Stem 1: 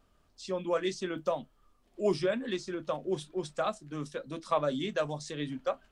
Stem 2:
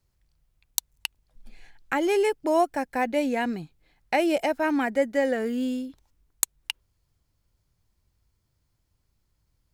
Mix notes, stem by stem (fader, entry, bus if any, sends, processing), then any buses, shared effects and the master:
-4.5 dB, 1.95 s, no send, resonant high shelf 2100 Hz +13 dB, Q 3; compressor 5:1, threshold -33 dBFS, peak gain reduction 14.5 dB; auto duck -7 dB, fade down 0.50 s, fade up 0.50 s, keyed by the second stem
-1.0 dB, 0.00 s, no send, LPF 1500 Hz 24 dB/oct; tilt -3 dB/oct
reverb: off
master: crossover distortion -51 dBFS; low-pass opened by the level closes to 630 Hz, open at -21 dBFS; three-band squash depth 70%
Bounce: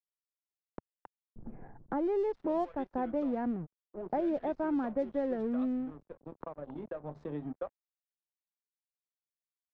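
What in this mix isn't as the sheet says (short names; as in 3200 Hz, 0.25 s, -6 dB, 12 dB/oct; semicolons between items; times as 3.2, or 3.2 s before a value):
stem 1: missing resonant high shelf 2100 Hz +13 dB, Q 3; stem 2 -1.0 dB -> -10.0 dB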